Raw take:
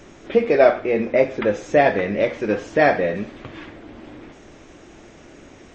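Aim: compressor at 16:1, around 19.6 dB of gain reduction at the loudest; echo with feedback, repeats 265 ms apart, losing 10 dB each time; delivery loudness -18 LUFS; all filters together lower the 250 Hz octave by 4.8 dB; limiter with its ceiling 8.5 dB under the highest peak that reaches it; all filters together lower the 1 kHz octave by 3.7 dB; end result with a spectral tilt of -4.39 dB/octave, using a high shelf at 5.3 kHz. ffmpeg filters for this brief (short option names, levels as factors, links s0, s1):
-af "equalizer=f=250:t=o:g=-6,equalizer=f=1000:t=o:g=-6,highshelf=f=5300:g=6,acompressor=threshold=0.0251:ratio=16,alimiter=level_in=1.78:limit=0.0631:level=0:latency=1,volume=0.562,aecho=1:1:265|530|795|1060:0.316|0.101|0.0324|0.0104,volume=13.3"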